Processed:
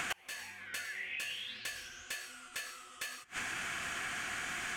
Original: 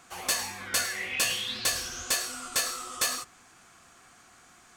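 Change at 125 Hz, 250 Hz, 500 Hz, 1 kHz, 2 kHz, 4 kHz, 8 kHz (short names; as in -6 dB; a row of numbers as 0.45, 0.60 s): -7.5, -7.5, -12.0, -7.0, -3.5, -11.0, -14.5 dB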